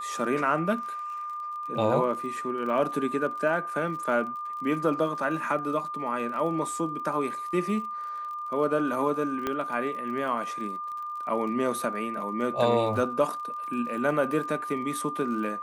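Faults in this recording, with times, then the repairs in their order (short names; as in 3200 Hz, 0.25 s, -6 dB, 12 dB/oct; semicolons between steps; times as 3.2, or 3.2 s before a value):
crackle 35/s -37 dBFS
tone 1200 Hz -32 dBFS
9.47 pop -15 dBFS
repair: de-click; notch 1200 Hz, Q 30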